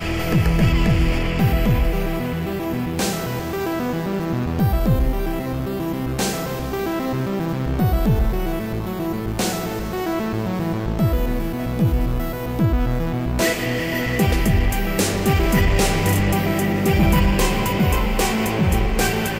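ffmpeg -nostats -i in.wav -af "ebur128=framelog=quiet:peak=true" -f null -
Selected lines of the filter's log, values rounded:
Integrated loudness:
  I:         -21.0 LUFS
  Threshold: -31.0 LUFS
Loudness range:
  LRA:         4.4 LU
  Threshold: -41.3 LUFS
  LRA low:   -23.0 LUFS
  LRA high:  -18.6 LUFS
True peak:
  Peak:       -8.1 dBFS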